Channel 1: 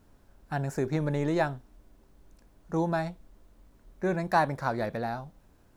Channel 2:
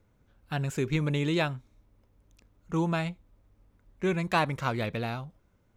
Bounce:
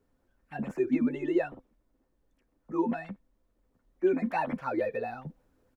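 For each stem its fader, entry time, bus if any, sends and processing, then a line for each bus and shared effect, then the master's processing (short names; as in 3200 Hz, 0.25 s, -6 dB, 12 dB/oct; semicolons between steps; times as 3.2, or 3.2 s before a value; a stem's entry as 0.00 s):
-14.5 dB, 0.00 s, no send, dry
-2.5 dB, 0.00 s, no send, sine-wave speech; tilt -2.5 dB/oct; endless flanger 9.8 ms +1.1 Hz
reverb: off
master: vocal rider 2 s; small resonant body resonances 260/510/1800 Hz, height 9 dB, ringing for 90 ms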